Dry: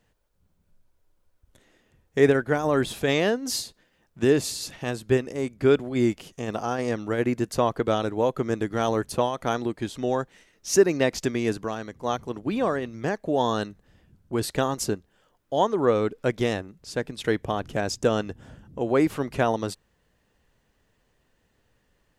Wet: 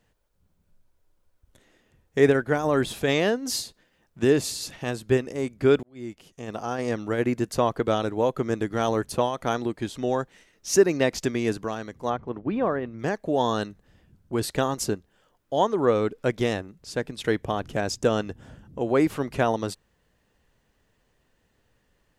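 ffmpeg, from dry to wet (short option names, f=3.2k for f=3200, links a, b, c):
-filter_complex "[0:a]asplit=3[a][b][c];[a]afade=t=out:st=12.09:d=0.02[d];[b]lowpass=2k,afade=t=in:st=12.09:d=0.02,afade=t=out:st=12.98:d=0.02[e];[c]afade=t=in:st=12.98:d=0.02[f];[d][e][f]amix=inputs=3:normalize=0,asplit=2[g][h];[g]atrim=end=5.83,asetpts=PTS-STARTPTS,afade=t=out:st=5.826:d=0.004:c=hsin[i];[h]atrim=start=5.83,asetpts=PTS-STARTPTS,afade=t=in:d=1.11[j];[i][j]concat=n=2:v=0:a=1"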